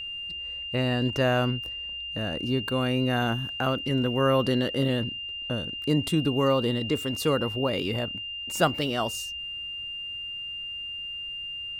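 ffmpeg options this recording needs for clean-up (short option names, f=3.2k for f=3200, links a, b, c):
-af "bandreject=f=2.8k:w=30"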